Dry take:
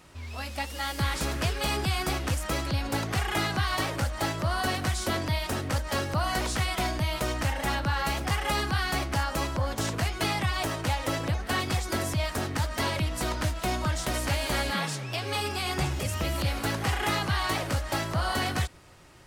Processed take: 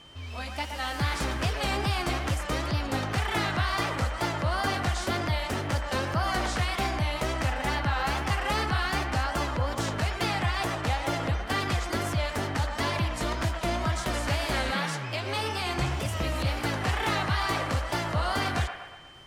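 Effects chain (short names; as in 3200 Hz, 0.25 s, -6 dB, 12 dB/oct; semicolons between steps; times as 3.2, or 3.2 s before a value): high shelf 9300 Hz -10 dB; crackle 35/s -55 dBFS; wow and flutter 110 cents; band-limited delay 0.12 s, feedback 53%, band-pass 1200 Hz, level -5.5 dB; whine 3100 Hz -51 dBFS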